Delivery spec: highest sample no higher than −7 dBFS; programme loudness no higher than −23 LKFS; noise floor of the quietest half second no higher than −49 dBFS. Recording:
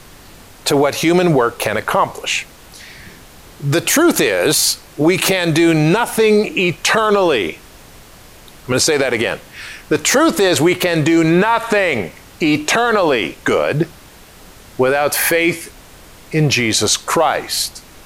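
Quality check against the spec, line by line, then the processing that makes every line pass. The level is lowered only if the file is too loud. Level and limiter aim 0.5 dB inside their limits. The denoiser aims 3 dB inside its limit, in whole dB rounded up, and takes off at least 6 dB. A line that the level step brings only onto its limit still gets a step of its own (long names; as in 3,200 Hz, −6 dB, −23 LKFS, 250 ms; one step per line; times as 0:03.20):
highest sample −4.0 dBFS: out of spec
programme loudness −15.0 LKFS: out of spec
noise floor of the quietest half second −41 dBFS: out of spec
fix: level −8.5 dB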